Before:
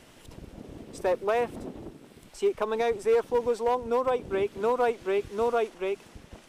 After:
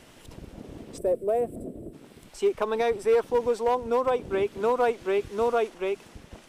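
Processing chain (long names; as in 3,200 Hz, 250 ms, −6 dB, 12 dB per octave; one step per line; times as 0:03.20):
0:00.98–0:01.93: gain on a spectral selection 730–7,500 Hz −17 dB
0:02.69–0:03.23: notch filter 6,700 Hz, Q 8.7
level +1.5 dB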